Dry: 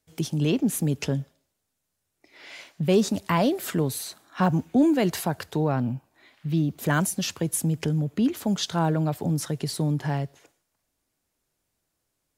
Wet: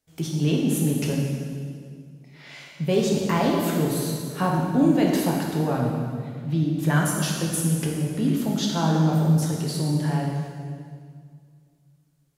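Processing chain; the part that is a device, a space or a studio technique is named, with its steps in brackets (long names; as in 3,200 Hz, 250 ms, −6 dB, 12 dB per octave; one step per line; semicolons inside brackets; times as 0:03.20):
stairwell (convolution reverb RT60 2.1 s, pre-delay 5 ms, DRR −2 dB)
0:06.47–0:07.06: low-pass filter 11,000 Hz 12 dB per octave
level −3 dB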